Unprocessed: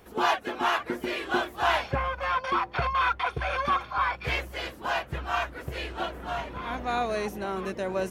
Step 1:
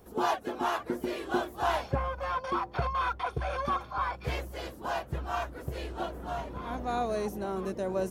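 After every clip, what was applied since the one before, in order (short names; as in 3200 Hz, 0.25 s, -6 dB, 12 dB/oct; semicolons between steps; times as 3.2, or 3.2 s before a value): bell 2300 Hz -11 dB 1.9 oct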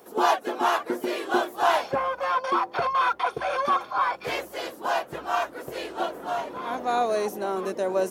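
HPF 340 Hz 12 dB/oct; gain +7.5 dB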